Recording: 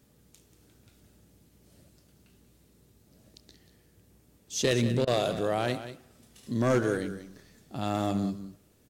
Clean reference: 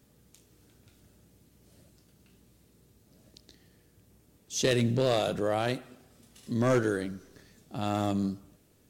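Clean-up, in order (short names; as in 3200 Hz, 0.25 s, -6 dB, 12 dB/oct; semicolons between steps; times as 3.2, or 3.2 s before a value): interpolate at 5.05, 21 ms; inverse comb 0.187 s -12 dB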